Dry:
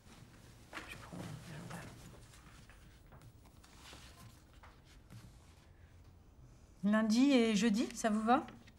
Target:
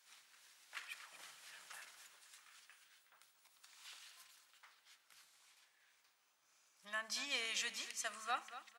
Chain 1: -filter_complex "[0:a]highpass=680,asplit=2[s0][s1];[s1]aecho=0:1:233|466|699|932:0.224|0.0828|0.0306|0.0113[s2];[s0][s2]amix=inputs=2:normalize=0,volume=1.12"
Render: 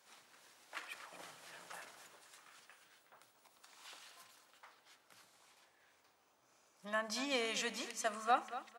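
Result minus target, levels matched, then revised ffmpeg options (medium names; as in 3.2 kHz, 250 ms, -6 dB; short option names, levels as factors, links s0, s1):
500 Hz band +9.0 dB
-filter_complex "[0:a]highpass=1600,asplit=2[s0][s1];[s1]aecho=0:1:233|466|699|932:0.224|0.0828|0.0306|0.0113[s2];[s0][s2]amix=inputs=2:normalize=0,volume=1.12"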